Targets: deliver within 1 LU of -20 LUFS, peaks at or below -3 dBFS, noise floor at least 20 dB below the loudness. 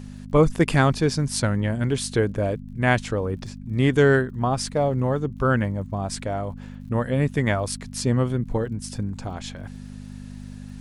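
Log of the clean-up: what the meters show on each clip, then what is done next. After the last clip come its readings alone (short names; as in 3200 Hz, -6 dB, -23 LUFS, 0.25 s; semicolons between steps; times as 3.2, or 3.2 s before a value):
ticks 53/s; hum 50 Hz; harmonics up to 250 Hz; hum level -35 dBFS; loudness -23.5 LUFS; peak -5.5 dBFS; loudness target -20.0 LUFS
-> de-click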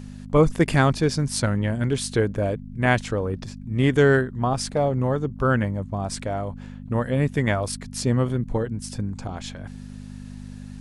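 ticks 0.19/s; hum 50 Hz; harmonics up to 250 Hz; hum level -35 dBFS
-> de-hum 50 Hz, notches 5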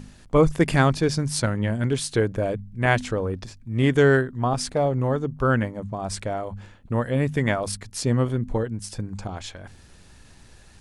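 hum none; loudness -24.0 LUFS; peak -5.5 dBFS; loudness target -20.0 LUFS
-> gain +4 dB; limiter -3 dBFS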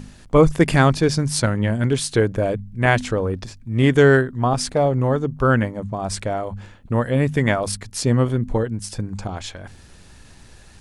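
loudness -20.0 LUFS; peak -3.0 dBFS; noise floor -46 dBFS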